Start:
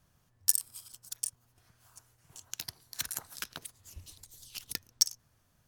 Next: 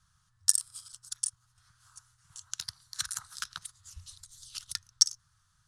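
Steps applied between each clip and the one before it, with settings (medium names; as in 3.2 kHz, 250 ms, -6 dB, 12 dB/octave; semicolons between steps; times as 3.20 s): FFT filter 110 Hz 0 dB, 170 Hz -6 dB, 300 Hz -26 dB, 550 Hz -22 dB, 1.3 kHz +7 dB, 2.4 kHz -6 dB, 3.7 kHz +4 dB, 9.8 kHz +3 dB, 15 kHz -24 dB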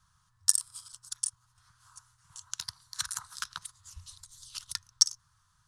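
peaking EQ 1 kHz +9 dB 0.38 oct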